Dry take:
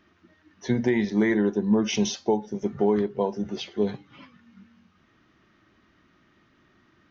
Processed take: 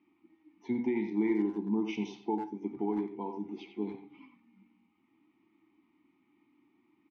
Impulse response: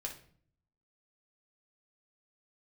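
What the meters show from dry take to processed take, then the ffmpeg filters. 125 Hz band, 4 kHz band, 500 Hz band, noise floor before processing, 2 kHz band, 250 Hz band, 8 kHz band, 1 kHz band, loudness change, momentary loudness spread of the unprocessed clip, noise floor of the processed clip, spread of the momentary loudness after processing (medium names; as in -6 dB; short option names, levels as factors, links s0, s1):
-13.0 dB, -17.5 dB, -11.5 dB, -63 dBFS, -13.0 dB, -7.0 dB, no reading, -6.5 dB, -8.5 dB, 9 LU, -72 dBFS, 10 LU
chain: -filter_complex "[0:a]asplit=3[s0][s1][s2];[s0]bandpass=f=300:t=q:w=8,volume=1[s3];[s1]bandpass=f=870:t=q:w=8,volume=0.501[s4];[s2]bandpass=f=2240:t=q:w=8,volume=0.355[s5];[s3][s4][s5]amix=inputs=3:normalize=0,asplit=2[s6][s7];[s7]adelay=90,highpass=300,lowpass=3400,asoftclip=type=hard:threshold=0.0355,volume=0.447[s8];[s6][s8]amix=inputs=2:normalize=0,asplit=2[s9][s10];[1:a]atrim=start_sample=2205[s11];[s10][s11]afir=irnorm=-1:irlink=0,volume=0.668[s12];[s9][s12]amix=inputs=2:normalize=0"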